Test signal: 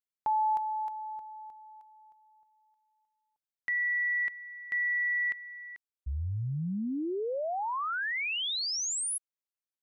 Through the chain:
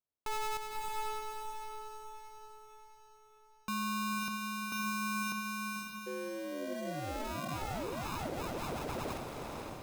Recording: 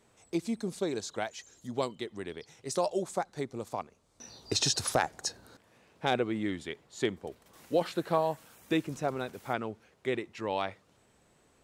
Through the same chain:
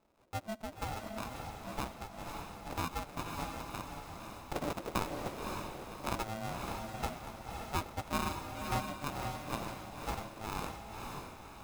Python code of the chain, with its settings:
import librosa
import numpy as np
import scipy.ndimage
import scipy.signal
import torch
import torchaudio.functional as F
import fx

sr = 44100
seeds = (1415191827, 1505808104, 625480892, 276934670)

y = fx.sample_hold(x, sr, seeds[0], rate_hz=1300.0, jitter_pct=0)
y = fx.echo_diffused(y, sr, ms=553, feedback_pct=45, wet_db=-3)
y = y * np.sin(2.0 * np.pi * 440.0 * np.arange(len(y)) / sr)
y = y * librosa.db_to_amplitude(-5.0)